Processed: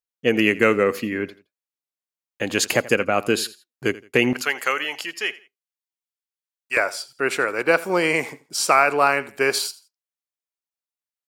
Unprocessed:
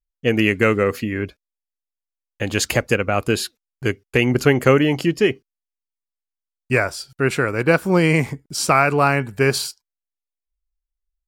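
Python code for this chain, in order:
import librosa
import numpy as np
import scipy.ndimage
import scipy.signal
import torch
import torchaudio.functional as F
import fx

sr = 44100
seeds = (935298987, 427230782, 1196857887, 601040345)

y = fx.highpass(x, sr, hz=fx.steps((0.0, 200.0), (4.33, 1100.0), (6.77, 420.0)), slope=12)
y = fx.echo_feedback(y, sr, ms=84, feedback_pct=29, wet_db=-19)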